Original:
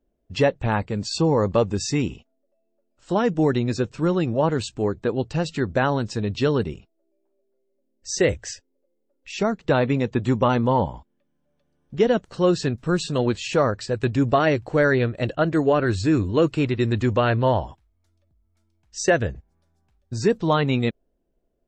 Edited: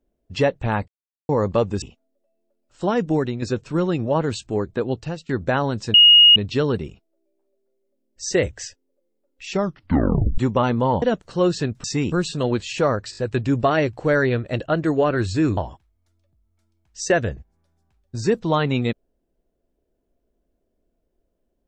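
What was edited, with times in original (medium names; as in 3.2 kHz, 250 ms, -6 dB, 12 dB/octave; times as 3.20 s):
0.88–1.29 s: mute
1.82–2.10 s: move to 12.87 s
3.38–3.70 s: fade out, to -7 dB
5.22–5.57 s: fade out, to -19 dB
6.22 s: add tone 2.87 kHz -7 dBFS 0.42 s
9.40 s: tape stop 0.84 s
10.88–12.05 s: delete
13.86 s: stutter 0.02 s, 4 plays
16.26–17.55 s: delete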